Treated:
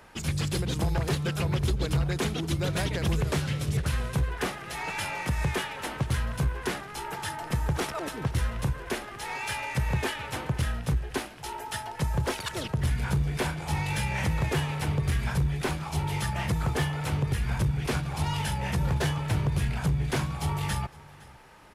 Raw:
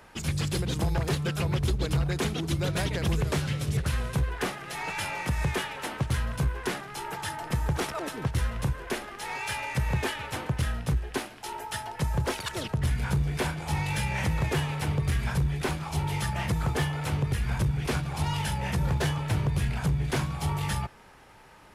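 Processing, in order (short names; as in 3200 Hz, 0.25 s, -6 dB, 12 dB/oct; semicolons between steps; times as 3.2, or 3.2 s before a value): echo 0.512 s -22.5 dB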